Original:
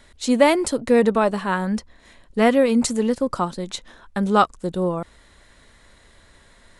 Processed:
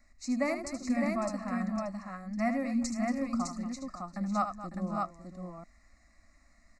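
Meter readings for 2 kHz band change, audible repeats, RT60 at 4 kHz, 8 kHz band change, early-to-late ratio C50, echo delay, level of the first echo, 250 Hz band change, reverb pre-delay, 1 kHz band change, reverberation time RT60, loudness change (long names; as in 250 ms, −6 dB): −12.5 dB, 4, no reverb audible, −12.5 dB, no reverb audible, 76 ms, −9.0 dB, −10.0 dB, no reverb audible, −12.5 dB, no reverb audible, −13.0 dB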